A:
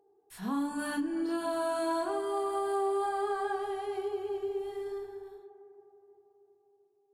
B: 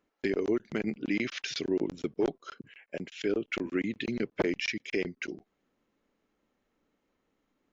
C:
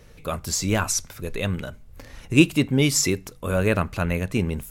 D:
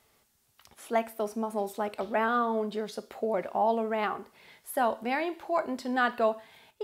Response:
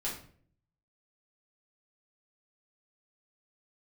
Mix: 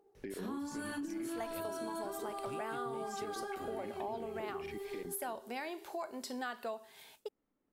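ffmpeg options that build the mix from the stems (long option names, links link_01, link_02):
-filter_complex "[0:a]equalizer=frequency=850:width_type=o:width=0.77:gain=-3,bandreject=frequency=50:width_type=h:width=6,bandreject=frequency=100:width_type=h:width=6,bandreject=frequency=150:width_type=h:width=6,bandreject=frequency=200:width_type=h:width=6,bandreject=frequency=250:width_type=h:width=6,bandreject=frequency=300:width_type=h:width=6,bandreject=frequency=350:width_type=h:width=6,bandreject=frequency=400:width_type=h:width=6,volume=1dB[link_01];[1:a]lowpass=frequency=1100:poles=1,alimiter=level_in=2.5dB:limit=-24dB:level=0:latency=1,volume=-2.5dB,volume=-5.5dB,asplit=2[link_02][link_03];[2:a]acompressor=threshold=-24dB:ratio=6,adelay=150,volume=-11.5dB[link_04];[3:a]agate=range=-33dB:threshold=-57dB:ratio=3:detection=peak,bass=frequency=250:gain=-5,treble=frequency=4000:gain=11,adelay=450,volume=-3.5dB[link_05];[link_03]apad=whole_len=214188[link_06];[link_04][link_06]sidechaincompress=threshold=-46dB:ratio=8:attack=16:release=437[link_07];[link_01][link_02][link_07][link_05]amix=inputs=4:normalize=0,acompressor=threshold=-39dB:ratio=4"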